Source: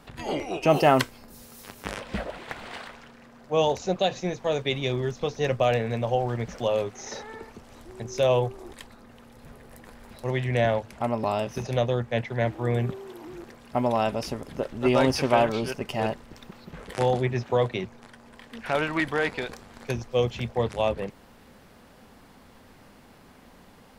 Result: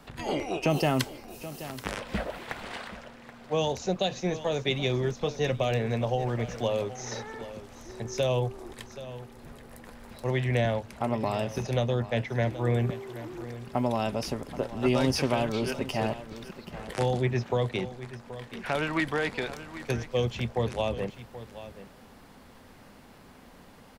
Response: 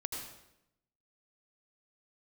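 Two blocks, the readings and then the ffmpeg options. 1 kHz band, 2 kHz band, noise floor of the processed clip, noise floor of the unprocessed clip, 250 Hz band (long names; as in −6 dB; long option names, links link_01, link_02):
−5.0 dB, −2.5 dB, −52 dBFS, −53 dBFS, −1.0 dB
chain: -filter_complex "[0:a]acrossover=split=290|3000[link_01][link_02][link_03];[link_02]acompressor=threshold=-26dB:ratio=6[link_04];[link_01][link_04][link_03]amix=inputs=3:normalize=0,aecho=1:1:778:0.188"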